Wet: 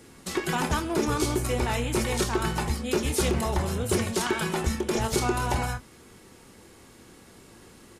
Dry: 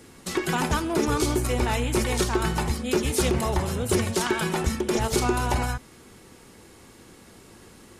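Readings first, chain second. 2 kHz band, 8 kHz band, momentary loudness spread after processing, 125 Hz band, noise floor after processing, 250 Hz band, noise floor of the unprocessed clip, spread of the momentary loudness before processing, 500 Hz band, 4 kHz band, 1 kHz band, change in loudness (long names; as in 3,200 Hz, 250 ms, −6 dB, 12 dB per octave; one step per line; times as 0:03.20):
−1.5 dB, −1.5 dB, 3 LU, −2.0 dB, −52 dBFS, −2.0 dB, −50 dBFS, 3 LU, −2.0 dB, −1.5 dB, −1.5 dB, −2.0 dB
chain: double-tracking delay 26 ms −10.5 dB
level −2 dB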